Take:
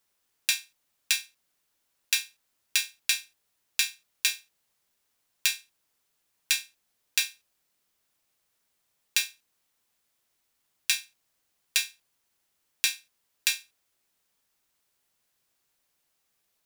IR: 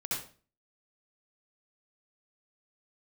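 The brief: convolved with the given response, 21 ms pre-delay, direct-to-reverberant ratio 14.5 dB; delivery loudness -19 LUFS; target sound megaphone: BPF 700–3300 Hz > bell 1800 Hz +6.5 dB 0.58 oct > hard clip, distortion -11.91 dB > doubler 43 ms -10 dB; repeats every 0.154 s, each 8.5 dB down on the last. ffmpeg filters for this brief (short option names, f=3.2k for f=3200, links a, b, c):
-filter_complex "[0:a]aecho=1:1:154|308|462|616:0.376|0.143|0.0543|0.0206,asplit=2[a][b];[1:a]atrim=start_sample=2205,adelay=21[c];[b][c]afir=irnorm=-1:irlink=0,volume=-18.5dB[d];[a][d]amix=inputs=2:normalize=0,highpass=700,lowpass=3.3k,equalizer=f=1.8k:t=o:w=0.58:g=6.5,asoftclip=type=hard:threshold=-22dB,asplit=2[e][f];[f]adelay=43,volume=-10dB[g];[e][g]amix=inputs=2:normalize=0,volume=14dB"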